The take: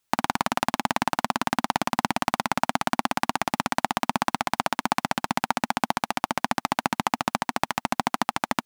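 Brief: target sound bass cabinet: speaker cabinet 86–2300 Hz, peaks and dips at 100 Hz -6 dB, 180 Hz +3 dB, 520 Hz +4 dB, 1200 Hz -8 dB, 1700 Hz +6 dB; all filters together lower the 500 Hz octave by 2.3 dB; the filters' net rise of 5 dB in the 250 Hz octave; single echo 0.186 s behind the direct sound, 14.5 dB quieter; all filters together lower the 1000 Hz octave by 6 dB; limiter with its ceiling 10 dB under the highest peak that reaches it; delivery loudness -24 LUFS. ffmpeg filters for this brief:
-af "equalizer=f=250:t=o:g=6,equalizer=f=500:t=o:g=-4,equalizer=f=1k:t=o:g=-5,alimiter=limit=-12.5dB:level=0:latency=1,highpass=f=86:w=0.5412,highpass=f=86:w=1.3066,equalizer=f=100:t=q:w=4:g=-6,equalizer=f=180:t=q:w=4:g=3,equalizer=f=520:t=q:w=4:g=4,equalizer=f=1.2k:t=q:w=4:g=-8,equalizer=f=1.7k:t=q:w=4:g=6,lowpass=f=2.3k:w=0.5412,lowpass=f=2.3k:w=1.3066,aecho=1:1:186:0.188,volume=11.5dB"

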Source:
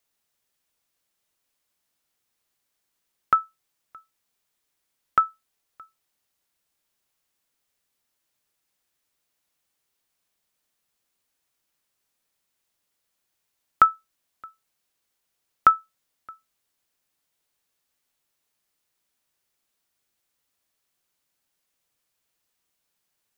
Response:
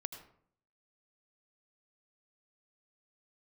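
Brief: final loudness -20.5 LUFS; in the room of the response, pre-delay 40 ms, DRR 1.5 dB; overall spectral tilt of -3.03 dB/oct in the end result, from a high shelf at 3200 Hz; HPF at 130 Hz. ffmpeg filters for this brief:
-filter_complex "[0:a]highpass=130,highshelf=f=3.2k:g=5,asplit=2[a][b];[1:a]atrim=start_sample=2205,adelay=40[c];[b][c]afir=irnorm=-1:irlink=0,volume=0dB[d];[a][d]amix=inputs=2:normalize=0,volume=2dB"

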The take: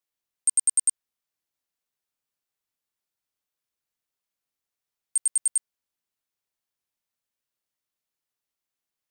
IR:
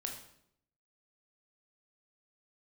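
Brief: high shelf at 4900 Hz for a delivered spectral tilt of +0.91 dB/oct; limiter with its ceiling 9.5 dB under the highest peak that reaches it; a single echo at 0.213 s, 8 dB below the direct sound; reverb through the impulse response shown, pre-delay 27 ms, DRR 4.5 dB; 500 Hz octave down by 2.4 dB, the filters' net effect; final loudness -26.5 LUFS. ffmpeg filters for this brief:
-filter_complex "[0:a]equalizer=f=500:t=o:g=-3,highshelf=f=4.9k:g=-7,alimiter=level_in=5.5dB:limit=-24dB:level=0:latency=1,volume=-5.5dB,aecho=1:1:213:0.398,asplit=2[a][b];[1:a]atrim=start_sample=2205,adelay=27[c];[b][c]afir=irnorm=-1:irlink=0,volume=-4dB[d];[a][d]amix=inputs=2:normalize=0,volume=10.5dB"

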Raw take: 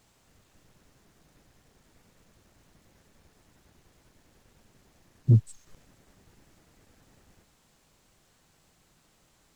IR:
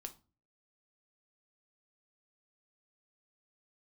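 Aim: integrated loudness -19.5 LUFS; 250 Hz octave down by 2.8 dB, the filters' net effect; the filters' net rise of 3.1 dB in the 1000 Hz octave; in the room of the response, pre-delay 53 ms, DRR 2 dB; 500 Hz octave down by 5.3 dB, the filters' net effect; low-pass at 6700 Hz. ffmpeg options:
-filter_complex "[0:a]lowpass=6.7k,equalizer=f=250:t=o:g=-3,equalizer=f=500:t=o:g=-8,equalizer=f=1k:t=o:g=6.5,asplit=2[a][b];[1:a]atrim=start_sample=2205,adelay=53[c];[b][c]afir=irnorm=-1:irlink=0,volume=2.5dB[d];[a][d]amix=inputs=2:normalize=0,volume=4.5dB"

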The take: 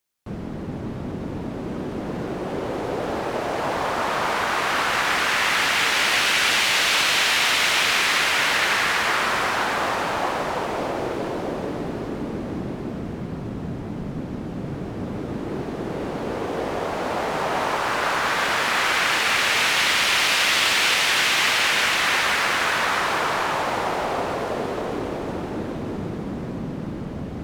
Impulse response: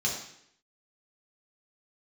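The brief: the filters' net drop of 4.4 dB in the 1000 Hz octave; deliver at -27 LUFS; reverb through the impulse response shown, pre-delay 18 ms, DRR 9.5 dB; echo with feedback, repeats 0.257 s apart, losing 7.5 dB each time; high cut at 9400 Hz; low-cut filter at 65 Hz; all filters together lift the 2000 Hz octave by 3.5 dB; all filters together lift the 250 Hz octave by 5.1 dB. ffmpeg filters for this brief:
-filter_complex "[0:a]highpass=65,lowpass=9.4k,equalizer=f=250:t=o:g=7,equalizer=f=1k:t=o:g=-8.5,equalizer=f=2k:t=o:g=6.5,aecho=1:1:257|514|771|1028|1285:0.422|0.177|0.0744|0.0312|0.0131,asplit=2[a][b];[1:a]atrim=start_sample=2205,adelay=18[c];[b][c]afir=irnorm=-1:irlink=0,volume=-17dB[d];[a][d]amix=inputs=2:normalize=0,volume=-8.5dB"

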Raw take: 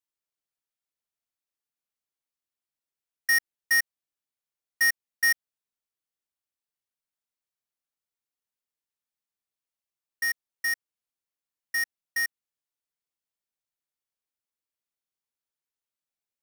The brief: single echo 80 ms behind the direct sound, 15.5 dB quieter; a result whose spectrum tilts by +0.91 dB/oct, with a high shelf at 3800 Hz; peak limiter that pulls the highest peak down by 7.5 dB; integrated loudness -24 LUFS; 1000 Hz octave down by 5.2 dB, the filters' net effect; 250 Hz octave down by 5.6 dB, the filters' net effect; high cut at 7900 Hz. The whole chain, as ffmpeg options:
-af "lowpass=7.9k,equalizer=f=250:t=o:g=-6,equalizer=f=1k:t=o:g=-7,highshelf=f=3.8k:g=-6.5,alimiter=level_in=4.5dB:limit=-24dB:level=0:latency=1,volume=-4.5dB,aecho=1:1:80:0.168,volume=11.5dB"

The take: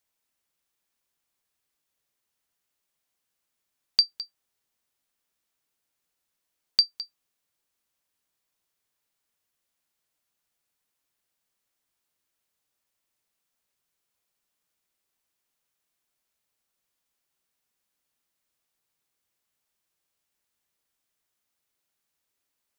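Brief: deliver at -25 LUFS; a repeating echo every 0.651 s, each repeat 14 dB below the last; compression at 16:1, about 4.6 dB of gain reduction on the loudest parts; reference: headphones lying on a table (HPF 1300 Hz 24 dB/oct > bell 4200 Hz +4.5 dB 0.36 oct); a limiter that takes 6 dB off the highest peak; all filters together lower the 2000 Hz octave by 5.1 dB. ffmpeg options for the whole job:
-af "equalizer=f=2k:t=o:g=-6.5,acompressor=threshold=-20dB:ratio=16,alimiter=limit=-14dB:level=0:latency=1,highpass=f=1.3k:w=0.5412,highpass=f=1.3k:w=1.3066,equalizer=f=4.2k:t=o:w=0.36:g=4.5,aecho=1:1:651|1302:0.2|0.0399,volume=10dB"

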